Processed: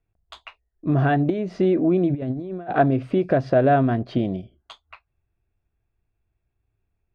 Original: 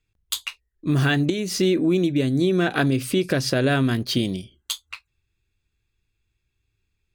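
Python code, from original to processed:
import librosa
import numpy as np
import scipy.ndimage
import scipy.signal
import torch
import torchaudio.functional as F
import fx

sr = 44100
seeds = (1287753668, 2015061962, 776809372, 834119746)

y = scipy.signal.sosfilt(scipy.signal.butter(2, 1400.0, 'lowpass', fs=sr, output='sos'), x)
y = fx.peak_eq(y, sr, hz=680.0, db=12.5, octaves=0.44)
y = fx.over_compress(y, sr, threshold_db=-25.0, ratio=-0.5, at=(2.09, 2.72), fade=0.02)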